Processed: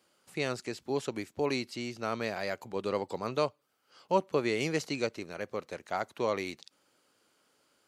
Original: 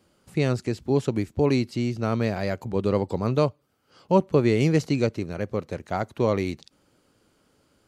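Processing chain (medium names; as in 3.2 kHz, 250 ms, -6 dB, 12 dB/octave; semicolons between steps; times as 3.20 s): high-pass 830 Hz 6 dB/octave; trim -1.5 dB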